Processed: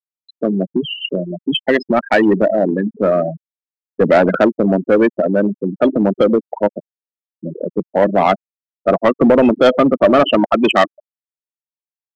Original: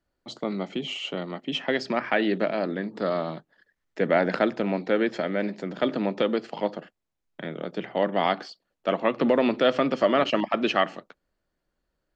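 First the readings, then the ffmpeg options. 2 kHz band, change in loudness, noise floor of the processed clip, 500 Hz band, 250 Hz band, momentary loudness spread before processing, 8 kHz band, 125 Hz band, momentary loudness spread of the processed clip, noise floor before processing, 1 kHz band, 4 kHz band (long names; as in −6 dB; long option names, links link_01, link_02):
+7.5 dB, +11.0 dB, below −85 dBFS, +11.0 dB, +12.0 dB, 12 LU, can't be measured, +12.0 dB, 10 LU, −80 dBFS, +10.0 dB, +7.5 dB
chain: -filter_complex "[0:a]afftfilt=real='re*gte(hypot(re,im),0.112)':imag='im*gte(hypot(re,im),0.112)':win_size=1024:overlap=0.75,acrossover=split=4400[link_01][link_02];[link_02]acompressor=threshold=-57dB:ratio=4:attack=1:release=60[link_03];[link_01][link_03]amix=inputs=2:normalize=0,aeval=exprs='0.376*(cos(1*acos(clip(val(0)/0.376,-1,1)))-cos(1*PI/2))+0.0422*(cos(5*acos(clip(val(0)/0.376,-1,1)))-cos(5*PI/2))':channel_layout=same,asplit=2[link_04][link_05];[link_05]asoftclip=type=hard:threshold=-19dB,volume=-8.5dB[link_06];[link_04][link_06]amix=inputs=2:normalize=0,volume=7dB"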